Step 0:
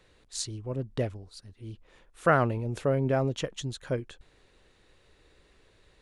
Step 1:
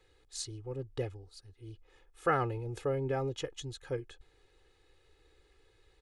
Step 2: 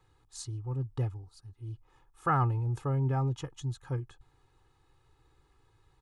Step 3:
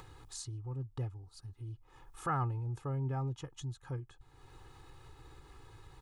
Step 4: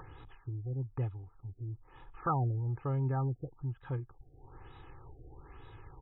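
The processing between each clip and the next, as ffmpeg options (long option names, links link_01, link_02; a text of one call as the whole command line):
ffmpeg -i in.wav -af "aecho=1:1:2.4:0.86,volume=-8dB" out.wav
ffmpeg -i in.wav -af "equalizer=frequency=125:width_type=o:width=1:gain=11,equalizer=frequency=250:width_type=o:width=1:gain=4,equalizer=frequency=500:width_type=o:width=1:gain=-10,equalizer=frequency=1000:width_type=o:width=1:gain=12,equalizer=frequency=2000:width_type=o:width=1:gain=-6,equalizer=frequency=4000:width_type=o:width=1:gain=-4,volume=-1.5dB" out.wav
ffmpeg -i in.wav -af "acompressor=mode=upward:threshold=-31dB:ratio=2.5,volume=-6.5dB" out.wav
ffmpeg -i in.wav -af "afftfilt=real='re*lt(b*sr/1024,740*pow(4000/740,0.5+0.5*sin(2*PI*1.1*pts/sr)))':imag='im*lt(b*sr/1024,740*pow(4000/740,0.5+0.5*sin(2*PI*1.1*pts/sr)))':win_size=1024:overlap=0.75,volume=3.5dB" out.wav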